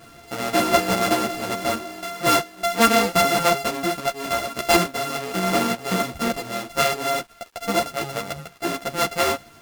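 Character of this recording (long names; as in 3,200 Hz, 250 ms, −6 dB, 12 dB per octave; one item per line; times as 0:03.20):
a buzz of ramps at a fixed pitch in blocks of 64 samples
sample-and-hold tremolo
a quantiser's noise floor 10 bits, dither none
a shimmering, thickened sound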